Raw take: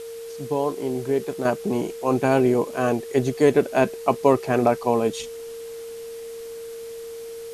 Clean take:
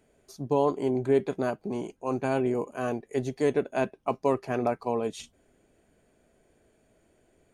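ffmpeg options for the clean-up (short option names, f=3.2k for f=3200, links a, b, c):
-af "bandreject=f=460:w=30,afwtdn=0.005,asetnsamples=n=441:p=0,asendcmd='1.45 volume volume -8dB',volume=0dB"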